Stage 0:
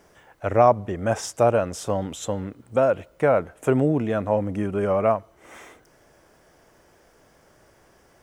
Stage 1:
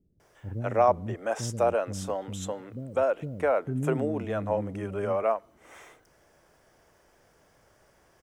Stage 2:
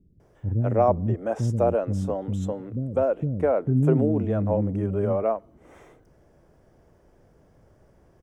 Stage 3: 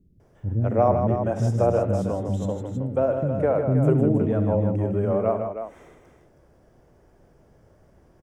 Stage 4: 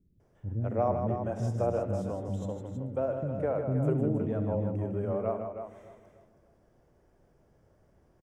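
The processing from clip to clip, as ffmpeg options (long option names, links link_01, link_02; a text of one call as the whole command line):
ffmpeg -i in.wav -filter_complex "[0:a]acrossover=split=280[link_01][link_02];[link_02]adelay=200[link_03];[link_01][link_03]amix=inputs=2:normalize=0,volume=-5dB" out.wav
ffmpeg -i in.wav -af "tiltshelf=frequency=680:gain=10,volume=1dB" out.wav
ffmpeg -i in.wav -af "aecho=1:1:68|155|318:0.251|0.447|0.376" out.wav
ffmpeg -i in.wav -filter_complex "[0:a]asplit=2[link_01][link_02];[link_02]adelay=296,lowpass=frequency=2000:poles=1,volume=-16dB,asplit=2[link_03][link_04];[link_04]adelay=296,lowpass=frequency=2000:poles=1,volume=0.41,asplit=2[link_05][link_06];[link_06]adelay=296,lowpass=frequency=2000:poles=1,volume=0.41,asplit=2[link_07][link_08];[link_08]adelay=296,lowpass=frequency=2000:poles=1,volume=0.41[link_09];[link_01][link_03][link_05][link_07][link_09]amix=inputs=5:normalize=0,volume=-8.5dB" out.wav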